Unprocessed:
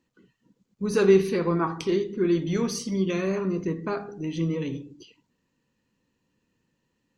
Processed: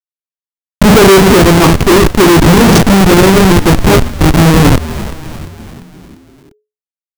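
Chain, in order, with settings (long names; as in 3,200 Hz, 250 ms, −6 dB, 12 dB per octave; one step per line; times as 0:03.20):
converter with a step at zero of −22.5 dBFS
on a send at −18.5 dB: convolution reverb RT60 1.7 s, pre-delay 60 ms
on the sum: comparator with hysteresis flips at −22 dBFS
echo with shifted repeats 347 ms, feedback 53%, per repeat −85 Hz, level −17.5 dB
boost into a limiter +23 dB
level −1 dB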